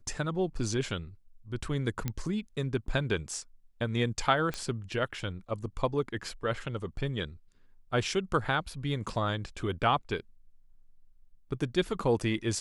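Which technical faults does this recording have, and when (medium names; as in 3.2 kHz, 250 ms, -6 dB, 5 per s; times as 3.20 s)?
2.08 s: pop -17 dBFS
4.54 s: pop -19 dBFS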